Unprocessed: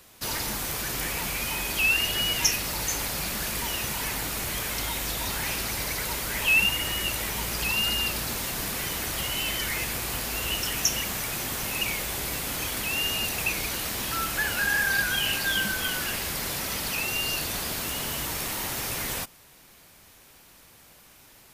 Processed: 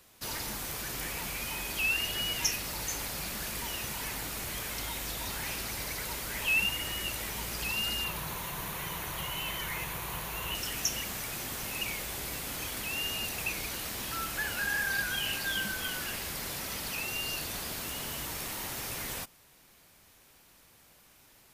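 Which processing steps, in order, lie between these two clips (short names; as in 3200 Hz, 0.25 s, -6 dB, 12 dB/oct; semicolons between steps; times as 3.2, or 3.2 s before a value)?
8.04–10.55 thirty-one-band EQ 160 Hz +8 dB, 250 Hz -9 dB, 1000 Hz +9 dB, 5000 Hz -9 dB, 8000 Hz -7 dB; gain -6.5 dB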